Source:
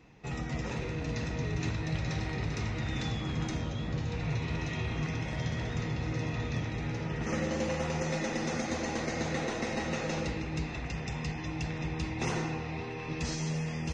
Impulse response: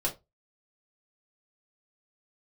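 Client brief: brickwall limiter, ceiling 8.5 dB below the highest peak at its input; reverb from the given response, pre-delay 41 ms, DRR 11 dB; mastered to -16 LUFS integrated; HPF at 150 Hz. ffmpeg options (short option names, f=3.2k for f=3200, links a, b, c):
-filter_complex "[0:a]highpass=150,alimiter=level_in=4.5dB:limit=-24dB:level=0:latency=1,volume=-4.5dB,asplit=2[a][b];[1:a]atrim=start_sample=2205,adelay=41[c];[b][c]afir=irnorm=-1:irlink=0,volume=-17dB[d];[a][d]amix=inputs=2:normalize=0,volume=21.5dB"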